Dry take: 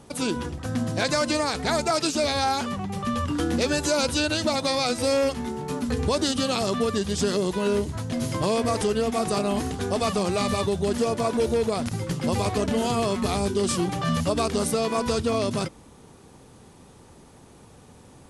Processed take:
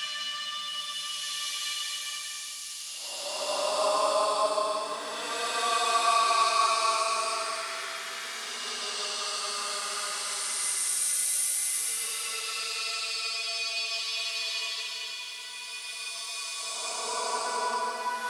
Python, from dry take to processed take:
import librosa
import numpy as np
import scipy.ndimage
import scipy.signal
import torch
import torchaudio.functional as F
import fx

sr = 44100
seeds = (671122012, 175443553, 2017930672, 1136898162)

y = fx.filter_lfo_highpass(x, sr, shape='saw_up', hz=1.4, low_hz=890.0, high_hz=3800.0, q=1.4)
y = fx.paulstretch(y, sr, seeds[0], factor=19.0, window_s=0.1, from_s=14.09)
y = fx.echo_heads(y, sr, ms=182, heads='first and second', feedback_pct=65, wet_db=-19.0)
y = fx.echo_crushed(y, sr, ms=176, feedback_pct=55, bits=9, wet_db=-12)